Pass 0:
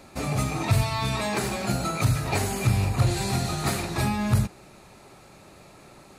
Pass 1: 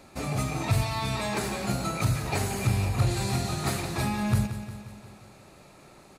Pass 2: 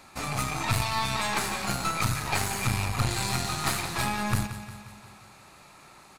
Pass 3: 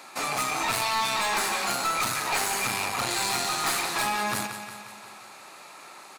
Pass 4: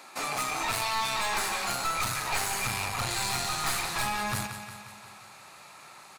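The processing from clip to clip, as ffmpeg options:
ffmpeg -i in.wav -af "aecho=1:1:177|354|531|708|885|1062:0.266|0.152|0.0864|0.0493|0.0281|0.016,volume=-3dB" out.wav
ffmpeg -i in.wav -af "lowshelf=frequency=730:width_type=q:width=1.5:gain=-7,aeval=exprs='0.158*(cos(1*acos(clip(val(0)/0.158,-1,1)))-cos(1*PI/2))+0.0251*(cos(4*acos(clip(val(0)/0.158,-1,1)))-cos(4*PI/2))+0.00316*(cos(8*acos(clip(val(0)/0.158,-1,1)))-cos(8*PI/2))':channel_layout=same,volume=3dB" out.wav
ffmpeg -i in.wav -af "highpass=360,asoftclip=type=tanh:threshold=-27.5dB,volume=6.5dB" out.wav
ffmpeg -i in.wav -af "asubboost=boost=8:cutoff=110,volume=-3dB" out.wav

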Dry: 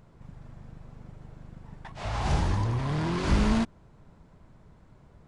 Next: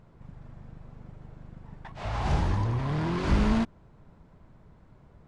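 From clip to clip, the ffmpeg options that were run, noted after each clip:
ffmpeg -i in.wav -af "highshelf=frequency=5400:gain=-9.5" out.wav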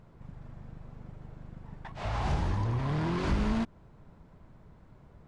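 ffmpeg -i in.wav -af "acompressor=threshold=-28dB:ratio=2" out.wav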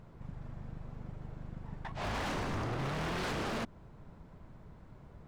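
ffmpeg -i in.wav -af "aeval=exprs='0.0251*(abs(mod(val(0)/0.0251+3,4)-2)-1)':channel_layout=same,volume=1.5dB" out.wav

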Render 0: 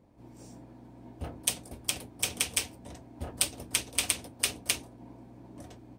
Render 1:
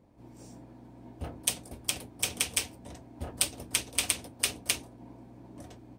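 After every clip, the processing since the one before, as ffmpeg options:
ffmpeg -i in.wav -af anull out.wav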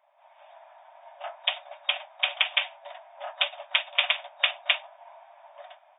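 ffmpeg -i in.wav -af "afftfilt=real='re*between(b*sr/4096,570,3700)':imag='im*between(b*sr/4096,570,3700)':win_size=4096:overlap=0.75,dynaudnorm=framelen=110:gausssize=9:maxgain=5dB,volume=5dB" out.wav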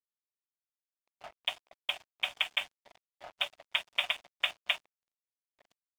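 ffmpeg -i in.wav -af "aeval=exprs='sgn(val(0))*max(abs(val(0))-0.0112,0)':channel_layout=same,volume=-6dB" out.wav

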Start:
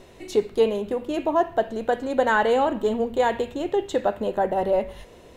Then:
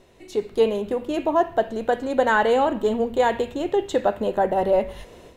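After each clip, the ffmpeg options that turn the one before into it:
ffmpeg -i in.wav -af "dynaudnorm=framelen=310:gausssize=3:maxgain=11.5dB,volume=-6.5dB" out.wav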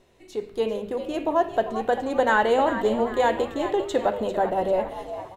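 ffmpeg -i in.wav -filter_complex "[0:a]bandreject=frequency=50.07:width_type=h:width=4,bandreject=frequency=100.14:width_type=h:width=4,bandreject=frequency=150.21:width_type=h:width=4,bandreject=frequency=200.28:width_type=h:width=4,bandreject=frequency=250.35:width_type=h:width=4,bandreject=frequency=300.42:width_type=h:width=4,bandreject=frequency=350.49:width_type=h:width=4,bandreject=frequency=400.56:width_type=h:width=4,bandreject=frequency=450.63:width_type=h:width=4,bandreject=frequency=500.7:width_type=h:width=4,bandreject=frequency=550.77:width_type=h:width=4,bandreject=frequency=600.84:width_type=h:width=4,bandreject=frequency=650.91:width_type=h:width=4,dynaudnorm=framelen=250:gausssize=9:maxgain=4.5dB,asplit=5[link_01][link_02][link_03][link_04][link_05];[link_02]adelay=396,afreqshift=92,volume=-11dB[link_06];[link_03]adelay=792,afreqshift=184,volume=-18.5dB[link_07];[link_04]adelay=1188,afreqshift=276,volume=-26.1dB[link_08];[link_05]adelay=1584,afreqshift=368,volume=-33.6dB[link_09];[link_01][link_06][link_07][link_08][link_09]amix=inputs=5:normalize=0,volume=-5dB" out.wav

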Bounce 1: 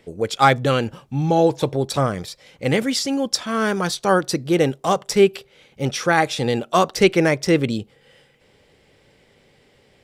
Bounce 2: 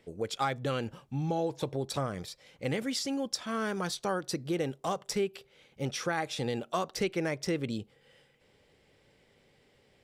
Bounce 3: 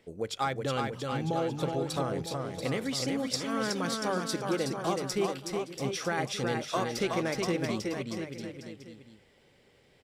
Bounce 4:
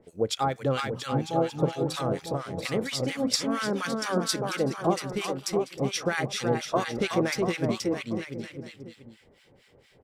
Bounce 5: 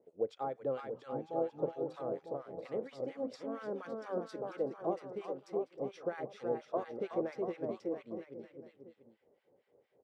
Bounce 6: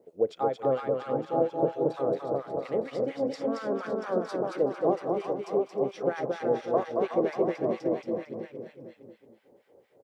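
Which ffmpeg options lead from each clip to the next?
ffmpeg -i in.wav -af "acompressor=threshold=-20dB:ratio=3,volume=-9dB" out.wav
ffmpeg -i in.wav -af "bandreject=frequency=50:width_type=h:width=6,bandreject=frequency=100:width_type=h:width=6,bandreject=frequency=150:width_type=h:width=6,aecho=1:1:370|684.5|951.8|1179|1372:0.631|0.398|0.251|0.158|0.1" out.wav
ffmpeg -i in.wav -filter_complex "[0:a]acrossover=split=1100[link_01][link_02];[link_01]aeval=exprs='val(0)*(1-1/2+1/2*cos(2*PI*4.3*n/s))':channel_layout=same[link_03];[link_02]aeval=exprs='val(0)*(1-1/2-1/2*cos(2*PI*4.3*n/s))':channel_layout=same[link_04];[link_03][link_04]amix=inputs=2:normalize=0,volume=8dB" out.wav
ffmpeg -i in.wav -af "bandpass=frequency=510:width_type=q:width=1.5:csg=0,volume=-6.5dB" out.wav
ffmpeg -i in.wav -af "aecho=1:1:226|452|678|904:0.631|0.183|0.0531|0.0154,volume=8.5dB" out.wav

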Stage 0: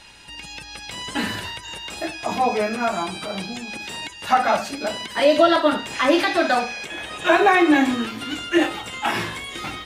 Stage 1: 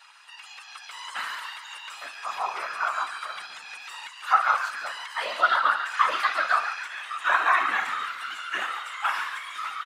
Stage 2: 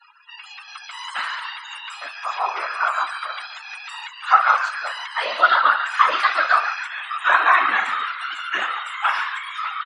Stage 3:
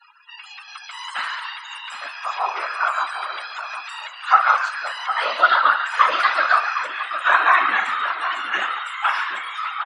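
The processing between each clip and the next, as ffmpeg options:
ffmpeg -i in.wav -filter_complex "[0:a]highpass=frequency=1200:width_type=q:width=5.5,afftfilt=real='hypot(re,im)*cos(2*PI*random(0))':imag='hypot(re,im)*sin(2*PI*random(1))':win_size=512:overlap=0.75,asplit=7[link_01][link_02][link_03][link_04][link_05][link_06][link_07];[link_02]adelay=141,afreqshift=130,volume=-10.5dB[link_08];[link_03]adelay=282,afreqshift=260,volume=-16dB[link_09];[link_04]adelay=423,afreqshift=390,volume=-21.5dB[link_10];[link_05]adelay=564,afreqshift=520,volume=-27dB[link_11];[link_06]adelay=705,afreqshift=650,volume=-32.6dB[link_12];[link_07]adelay=846,afreqshift=780,volume=-38.1dB[link_13];[link_01][link_08][link_09][link_10][link_11][link_12][link_13]amix=inputs=7:normalize=0,volume=-3.5dB" out.wav
ffmpeg -i in.wav -af "afftdn=noise_reduction=33:noise_floor=-48,volume=6dB" out.wav
ffmpeg -i in.wav -filter_complex "[0:a]asplit=2[link_01][link_02];[link_02]adelay=758,volume=-9dB,highshelf=frequency=4000:gain=-17.1[link_03];[link_01][link_03]amix=inputs=2:normalize=0" out.wav

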